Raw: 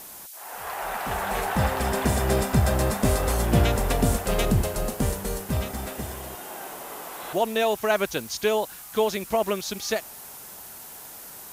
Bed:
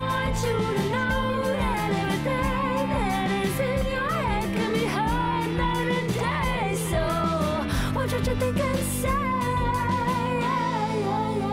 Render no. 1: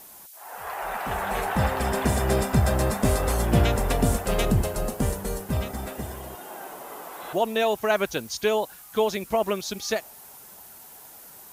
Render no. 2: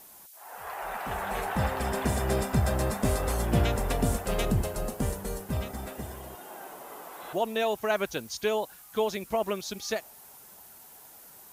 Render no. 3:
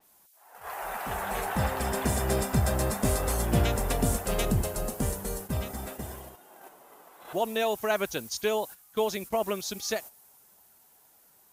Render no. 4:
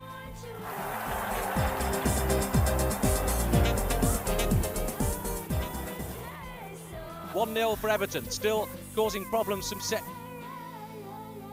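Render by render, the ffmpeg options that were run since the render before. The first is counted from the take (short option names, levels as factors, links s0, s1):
-af "afftdn=nr=6:nf=-42"
-af "volume=0.596"
-af "agate=range=0.316:threshold=0.00891:ratio=16:detection=peak,adynamicequalizer=threshold=0.00355:dfrequency=5100:dqfactor=0.7:tfrequency=5100:tqfactor=0.7:attack=5:release=100:ratio=0.375:range=2.5:mode=boostabove:tftype=highshelf"
-filter_complex "[1:a]volume=0.15[s0];[0:a][s0]amix=inputs=2:normalize=0"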